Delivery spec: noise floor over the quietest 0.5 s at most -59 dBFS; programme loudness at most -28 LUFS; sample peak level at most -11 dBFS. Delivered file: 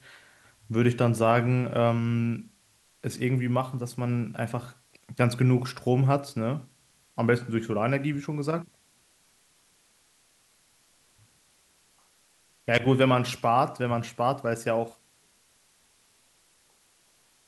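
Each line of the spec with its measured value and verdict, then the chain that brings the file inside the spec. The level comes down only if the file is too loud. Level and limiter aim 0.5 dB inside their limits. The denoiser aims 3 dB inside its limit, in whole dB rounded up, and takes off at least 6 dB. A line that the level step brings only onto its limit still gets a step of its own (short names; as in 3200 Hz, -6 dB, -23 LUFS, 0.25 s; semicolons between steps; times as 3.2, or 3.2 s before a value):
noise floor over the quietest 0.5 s -64 dBFS: OK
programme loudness -26.5 LUFS: fail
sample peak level -7.5 dBFS: fail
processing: gain -2 dB; limiter -11.5 dBFS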